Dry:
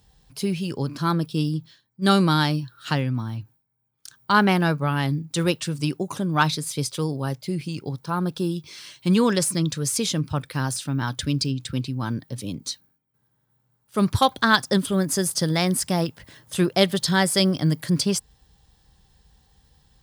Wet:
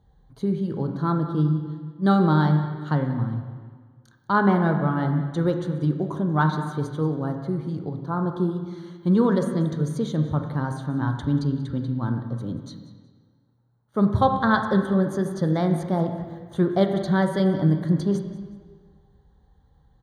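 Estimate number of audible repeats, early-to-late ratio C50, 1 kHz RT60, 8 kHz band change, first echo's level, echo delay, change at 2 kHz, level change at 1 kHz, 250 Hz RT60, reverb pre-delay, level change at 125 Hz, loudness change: 1, 6.5 dB, 1.6 s, under -20 dB, -17.0 dB, 185 ms, -5.0 dB, -1.0 dB, 1.6 s, 7 ms, +1.5 dB, -0.5 dB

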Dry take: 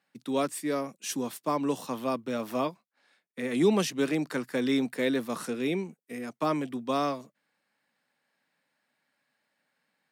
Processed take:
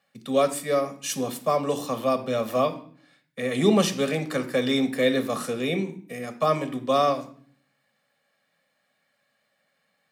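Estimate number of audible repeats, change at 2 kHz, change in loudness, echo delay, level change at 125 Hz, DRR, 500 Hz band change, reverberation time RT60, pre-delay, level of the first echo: no echo, +4.5 dB, +5.0 dB, no echo, +6.5 dB, 8.0 dB, +6.5 dB, 0.50 s, 3 ms, no echo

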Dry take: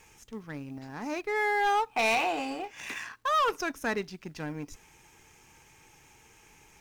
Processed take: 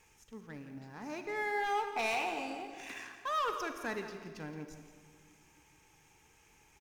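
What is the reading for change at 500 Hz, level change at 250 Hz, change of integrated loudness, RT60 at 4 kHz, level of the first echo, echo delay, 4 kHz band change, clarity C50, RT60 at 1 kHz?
-7.0 dB, -7.0 dB, -7.0 dB, 1.5 s, -12.5 dB, 170 ms, -7.5 dB, 7.0 dB, 1.8 s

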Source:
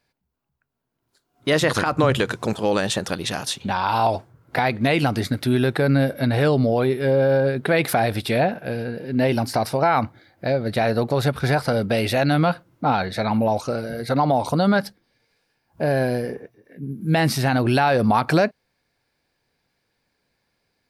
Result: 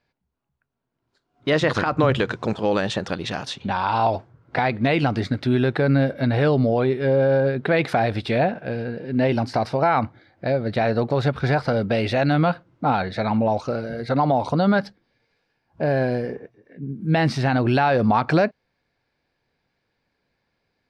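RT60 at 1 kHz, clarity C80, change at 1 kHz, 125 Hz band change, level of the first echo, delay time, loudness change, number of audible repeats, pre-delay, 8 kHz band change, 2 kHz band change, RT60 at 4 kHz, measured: no reverb, no reverb, -0.5 dB, 0.0 dB, no echo, no echo, -0.5 dB, no echo, no reverb, under -10 dB, -1.0 dB, no reverb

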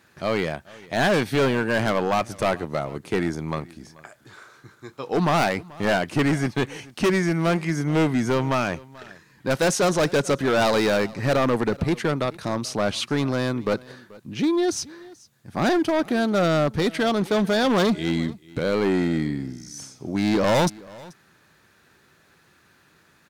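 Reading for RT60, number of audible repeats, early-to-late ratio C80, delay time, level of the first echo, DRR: no reverb, 1, no reverb, 434 ms, -22.0 dB, no reverb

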